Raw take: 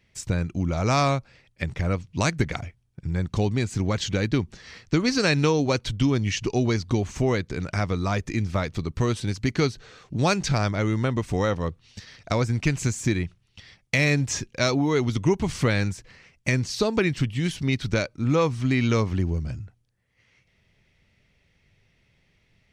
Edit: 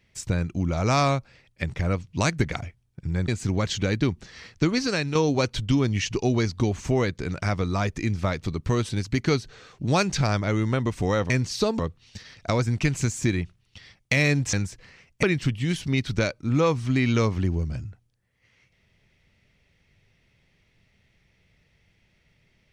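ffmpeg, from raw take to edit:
ffmpeg -i in.wav -filter_complex "[0:a]asplit=7[link_01][link_02][link_03][link_04][link_05][link_06][link_07];[link_01]atrim=end=3.282[link_08];[link_02]atrim=start=3.588:end=5.46,asetpts=PTS-STARTPTS,afade=type=out:start_time=1.352:duration=0.52:silence=0.375837[link_09];[link_03]atrim=start=5.46:end=11.612,asetpts=PTS-STARTPTS,afade=type=in:duration=0.004:curve=hsin:silence=0.375837[link_10];[link_04]atrim=start=16.488:end=16.982[link_11];[link_05]atrim=start=11.608:end=14.352[link_12];[link_06]atrim=start=15.788:end=16.492[link_13];[link_07]atrim=start=16.978[link_14];[link_09][link_10]concat=n=2:v=0:a=1[link_15];[link_08][link_15]acrossfade=duration=0.004:curve1=hsin:curve2=hsin[link_16];[link_16][link_11]acrossfade=duration=0.004:curve1=hsin:curve2=hsin[link_17];[link_17][link_12]acrossfade=duration=0.004:curve1=hsin:curve2=hsin[link_18];[link_18][link_13]acrossfade=duration=0.004:curve1=hsin:curve2=hsin[link_19];[link_19][link_14]acrossfade=duration=0.004:curve1=hsin:curve2=hsin" out.wav

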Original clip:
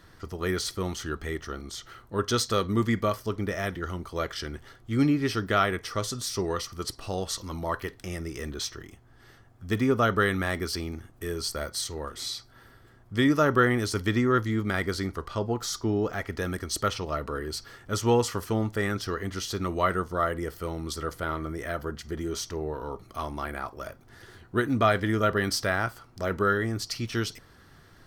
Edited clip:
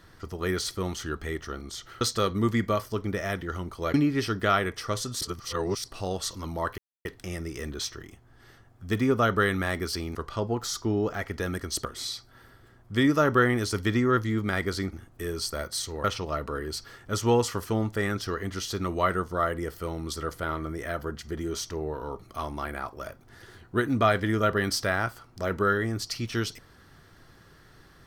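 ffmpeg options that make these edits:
ffmpeg -i in.wav -filter_complex "[0:a]asplit=10[link_01][link_02][link_03][link_04][link_05][link_06][link_07][link_08][link_09][link_10];[link_01]atrim=end=2.012[link_11];[link_02]atrim=start=2.348:end=4.282[link_12];[link_03]atrim=start=5.008:end=6.282[link_13];[link_04]atrim=start=6.278:end=6.912,asetpts=PTS-STARTPTS,areverse[link_14];[link_05]atrim=start=6.908:end=7.85,asetpts=PTS-STARTPTS,afade=type=out:start_time=0.938:duration=0.004:curve=hsin,apad=pad_dur=0.27[link_15];[link_06]atrim=start=7.85:end=10.952,asetpts=PTS-STARTPTS,afade=type=in:duration=0.004:curve=hsin[link_16];[link_07]atrim=start=15.138:end=16.842[link_17];[link_08]atrim=start=12.058:end=15.142[link_18];[link_09]atrim=start=10.948:end=12.062[link_19];[link_10]atrim=start=16.838[link_20];[link_11][link_12]acrossfade=duration=0.004:curve1=hsin:curve2=hsin[link_21];[link_21][link_13]acrossfade=duration=0.004:curve1=hsin:curve2=hsin[link_22];[link_22][link_14]acrossfade=duration=0.004:curve1=hsin:curve2=hsin[link_23];[link_15][link_16]concat=n=2:v=0:a=1[link_24];[link_23][link_24]acrossfade=duration=0.004:curve1=hsin:curve2=hsin[link_25];[link_25][link_17]acrossfade=duration=0.004:curve1=hsin:curve2=hsin[link_26];[link_26][link_18]acrossfade=duration=0.004:curve1=hsin:curve2=hsin[link_27];[link_27][link_19]acrossfade=duration=0.004:curve1=hsin:curve2=hsin[link_28];[link_28][link_20]acrossfade=duration=0.004:curve1=hsin:curve2=hsin" out.wav

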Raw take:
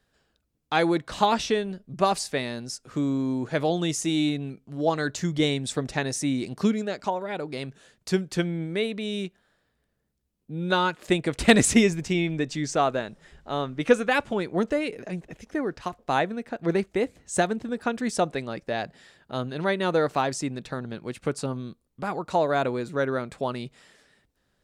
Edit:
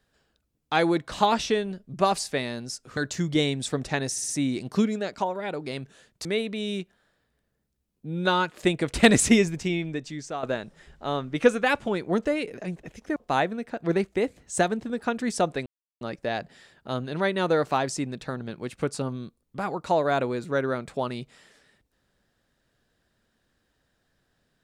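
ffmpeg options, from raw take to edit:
ffmpeg -i in.wav -filter_complex "[0:a]asplit=9[link_01][link_02][link_03][link_04][link_05][link_06][link_07][link_08][link_09];[link_01]atrim=end=2.972[link_10];[link_02]atrim=start=5.008:end=6.202[link_11];[link_03]atrim=start=6.138:end=6.202[link_12];[link_04]atrim=start=6.138:end=6.202[link_13];[link_05]atrim=start=6.138:end=8.112[link_14];[link_06]atrim=start=8.698:end=12.88,asetpts=PTS-STARTPTS,afade=type=out:start_time=3.152:duration=1.03:silence=0.251189[link_15];[link_07]atrim=start=12.88:end=15.612,asetpts=PTS-STARTPTS,afade=type=in:duration=0.004:curve=hsin:silence=0.251189[link_16];[link_08]atrim=start=15.948:end=18.45,asetpts=PTS-STARTPTS,afade=type=out:start_time=2.498:duration=0.004:curve=hsin,apad=pad_dur=0.35[link_17];[link_09]atrim=start=18.45,asetpts=PTS-STARTPTS,afade=type=in:duration=0.004:curve=hsin[link_18];[link_10][link_11]acrossfade=duration=0.004:curve1=hsin:curve2=hsin[link_19];[link_19][link_12]acrossfade=duration=0.004:curve1=hsin:curve2=hsin[link_20];[link_20][link_13]acrossfade=duration=0.004:curve1=hsin:curve2=hsin[link_21];[link_21][link_14]acrossfade=duration=0.004:curve1=hsin:curve2=hsin[link_22];[link_15][link_16]concat=n=2:v=0:a=1[link_23];[link_22][link_23]acrossfade=duration=0.004:curve1=hsin:curve2=hsin[link_24];[link_17][link_18]concat=n=2:v=0:a=1[link_25];[link_24][link_25]acrossfade=duration=0.004:curve1=hsin:curve2=hsin" out.wav

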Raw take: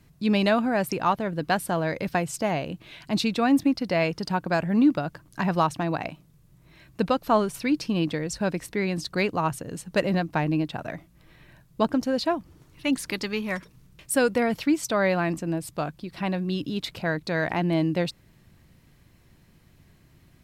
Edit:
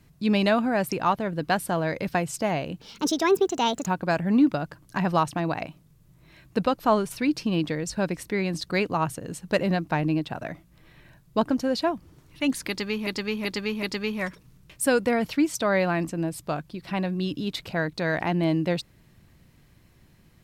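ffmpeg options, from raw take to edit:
ffmpeg -i in.wav -filter_complex "[0:a]asplit=6[link_01][link_02][link_03][link_04][link_05][link_06];[link_01]atrim=end=2.814[link_07];[link_02]atrim=start=2.81:end=4.3,asetpts=PTS-STARTPTS,asetrate=62181,aresample=44100,atrim=end_sample=46602,asetpts=PTS-STARTPTS[link_08];[link_03]atrim=start=4.296:end=13.502[link_09];[link_04]atrim=start=13.118:end=13.502[link_10];[link_05]atrim=start=13.118:end=13.502[link_11];[link_06]atrim=start=13.118[link_12];[link_07][link_08]acrossfade=duration=0.004:curve1=hsin:curve2=hsin[link_13];[link_13][link_09]acrossfade=duration=0.004:curve1=hsin:curve2=hsin[link_14];[link_14][link_10]acrossfade=duration=0.004:curve1=hsin:curve2=hsin[link_15];[link_15][link_11]acrossfade=duration=0.004:curve1=hsin:curve2=hsin[link_16];[link_16][link_12]acrossfade=duration=0.004:curve1=hsin:curve2=hsin" out.wav

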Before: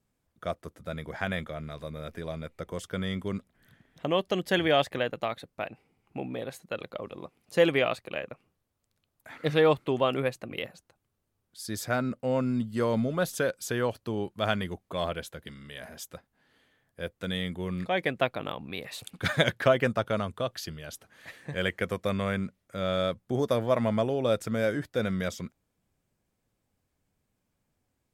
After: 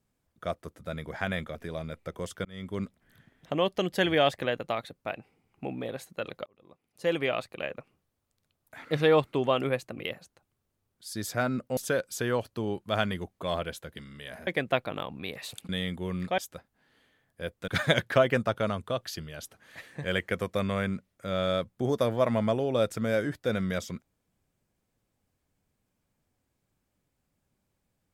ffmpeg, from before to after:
ffmpeg -i in.wav -filter_complex "[0:a]asplit=9[link_01][link_02][link_03][link_04][link_05][link_06][link_07][link_08][link_09];[link_01]atrim=end=1.552[link_10];[link_02]atrim=start=2.078:end=2.98,asetpts=PTS-STARTPTS,afade=type=out:start_time=0.898:duration=0.004:curve=hsin[link_11];[link_03]atrim=start=2.98:end=6.99,asetpts=PTS-STARTPTS,afade=type=in:duration=0.35,afade=type=out:start_time=4.006:duration=0.004:curve=hsin[link_12];[link_04]atrim=start=6.99:end=12.302,asetpts=PTS-STARTPTS,afade=type=in:duration=1.21[link_13];[link_05]atrim=start=13.268:end=15.972[link_14];[link_06]atrim=start=17.958:end=19.182[link_15];[link_07]atrim=start=17.268:end=17.962[link_16];[link_08]atrim=start=15.968:end=17.272[link_17];[link_09]atrim=start=19.178[link_18];[link_11][link_12][link_13]concat=n=3:v=0:a=1[link_19];[link_10][link_19]acrossfade=duration=0.004:curve1=hsin:curve2=hsin[link_20];[link_20][link_14]acrossfade=duration=0.004:curve1=hsin:curve2=hsin[link_21];[link_21][link_15]acrossfade=duration=0.004:curve1=hsin:curve2=hsin[link_22];[link_22][link_16]acrossfade=duration=0.004:curve1=hsin:curve2=hsin[link_23];[link_23][link_17]acrossfade=duration=0.004:curve1=hsin:curve2=hsin[link_24];[link_24][link_18]acrossfade=duration=0.004:curve1=hsin:curve2=hsin" out.wav

